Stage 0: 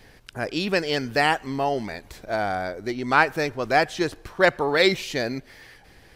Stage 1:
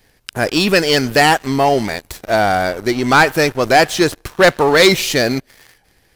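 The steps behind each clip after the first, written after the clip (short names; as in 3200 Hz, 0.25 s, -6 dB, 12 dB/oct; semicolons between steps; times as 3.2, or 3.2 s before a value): high shelf 6900 Hz +10.5 dB; sample leveller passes 3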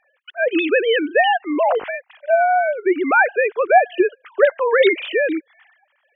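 sine-wave speech; compressor 1.5:1, threshold -17 dBFS, peak gain reduction 5.5 dB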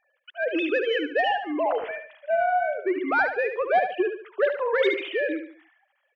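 soft clip -4.5 dBFS, distortion -23 dB; feedback echo 73 ms, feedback 36%, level -8 dB; gain -7.5 dB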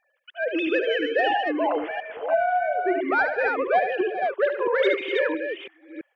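reverse delay 0.334 s, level -4.5 dB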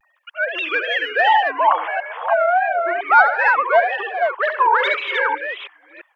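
resonant high-pass 990 Hz, resonance Q 4; wow and flutter 130 cents; gain +5.5 dB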